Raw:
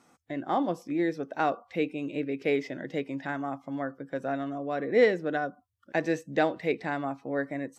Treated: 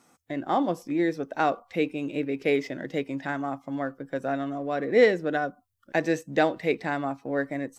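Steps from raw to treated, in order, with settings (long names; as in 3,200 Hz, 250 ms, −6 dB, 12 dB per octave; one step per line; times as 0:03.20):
high-shelf EQ 7,000 Hz +8 dB
in parallel at −9 dB: slack as between gear wheels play −40.5 dBFS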